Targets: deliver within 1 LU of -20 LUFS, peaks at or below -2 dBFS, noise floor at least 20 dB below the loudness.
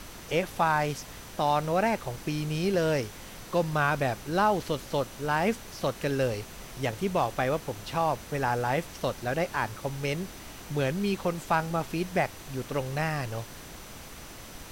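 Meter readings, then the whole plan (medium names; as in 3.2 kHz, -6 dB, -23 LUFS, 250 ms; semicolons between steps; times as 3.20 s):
steady tone 6 kHz; tone level -57 dBFS; noise floor -45 dBFS; noise floor target -50 dBFS; loudness -29.5 LUFS; peak level -12.0 dBFS; loudness target -20.0 LUFS
-> band-stop 6 kHz, Q 30; noise print and reduce 6 dB; trim +9.5 dB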